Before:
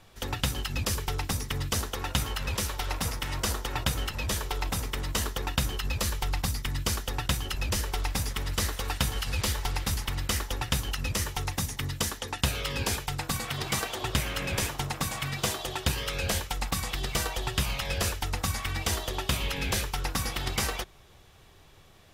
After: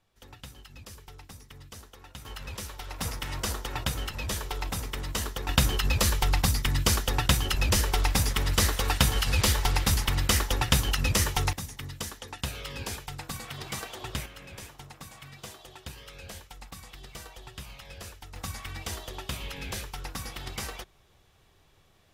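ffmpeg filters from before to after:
ffmpeg -i in.wav -af "asetnsamples=nb_out_samples=441:pad=0,asendcmd='2.25 volume volume -8dB;2.99 volume volume -2dB;5.49 volume volume 5dB;11.53 volume volume -6.5dB;14.26 volume volume -14.5dB;18.36 volume volume -7dB',volume=-17dB" out.wav

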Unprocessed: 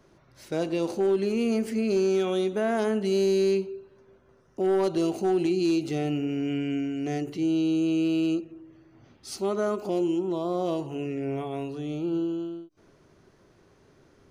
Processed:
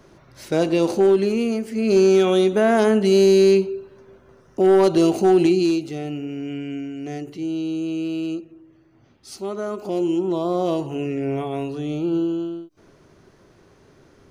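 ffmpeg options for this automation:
ffmpeg -i in.wav -af "volume=26dB,afade=type=out:start_time=1.04:duration=0.65:silence=0.316228,afade=type=in:start_time=1.69:duration=0.29:silence=0.298538,afade=type=out:start_time=5.45:duration=0.42:silence=0.316228,afade=type=in:start_time=9.68:duration=0.57:silence=0.446684" out.wav

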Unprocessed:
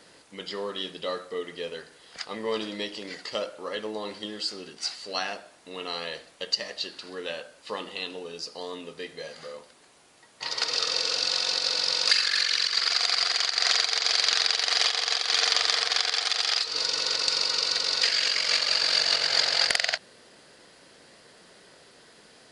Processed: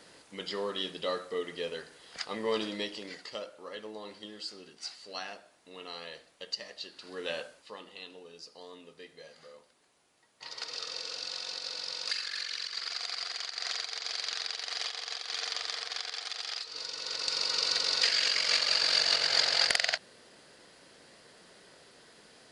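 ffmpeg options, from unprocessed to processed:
ffmpeg -i in.wav -af "volume=17dB,afade=type=out:start_time=2.66:duration=0.74:silence=0.398107,afade=type=in:start_time=6.94:duration=0.48:silence=0.334965,afade=type=out:start_time=7.42:duration=0.27:silence=0.251189,afade=type=in:start_time=16.98:duration=0.7:silence=0.354813" out.wav

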